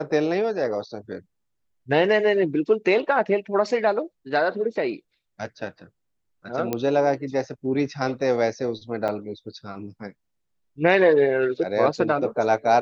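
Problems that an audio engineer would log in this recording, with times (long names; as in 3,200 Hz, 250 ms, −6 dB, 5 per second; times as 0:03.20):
0:06.73: click −11 dBFS
0:09.08–0:09.09: drop-out 6.8 ms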